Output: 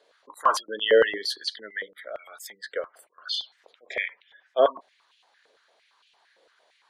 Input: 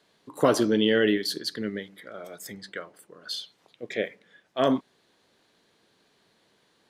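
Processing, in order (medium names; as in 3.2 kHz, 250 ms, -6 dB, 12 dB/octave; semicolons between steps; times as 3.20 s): wavefolder -11 dBFS; spectral gate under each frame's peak -25 dB strong; step-sequenced high-pass 8.8 Hz 500–2800 Hz; trim -1 dB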